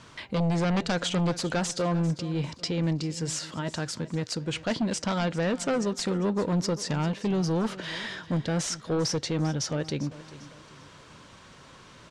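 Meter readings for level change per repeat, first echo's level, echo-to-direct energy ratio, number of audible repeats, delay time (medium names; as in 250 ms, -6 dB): -8.0 dB, -17.0 dB, -16.5 dB, 3, 397 ms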